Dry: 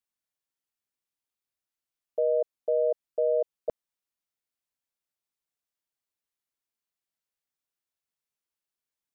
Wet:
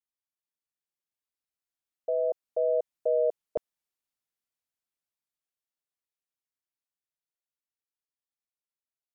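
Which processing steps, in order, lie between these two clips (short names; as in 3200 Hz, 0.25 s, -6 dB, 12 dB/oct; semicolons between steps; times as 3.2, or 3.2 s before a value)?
Doppler pass-by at 3.35, 18 m/s, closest 24 m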